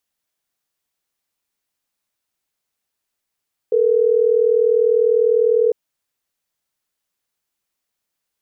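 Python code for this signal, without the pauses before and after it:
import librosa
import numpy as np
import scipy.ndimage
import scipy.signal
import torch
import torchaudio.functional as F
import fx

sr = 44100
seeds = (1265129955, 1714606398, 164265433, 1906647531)

y = fx.call_progress(sr, length_s=3.12, kind='ringback tone', level_db=-15.0)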